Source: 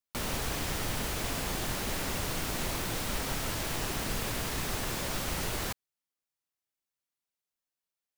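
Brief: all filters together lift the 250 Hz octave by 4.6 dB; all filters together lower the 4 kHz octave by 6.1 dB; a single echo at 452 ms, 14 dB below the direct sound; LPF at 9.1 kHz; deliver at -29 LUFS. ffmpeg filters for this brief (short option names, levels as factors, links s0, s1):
-af "lowpass=9100,equalizer=f=250:t=o:g=6,equalizer=f=4000:t=o:g=-8,aecho=1:1:452:0.2,volume=1.88"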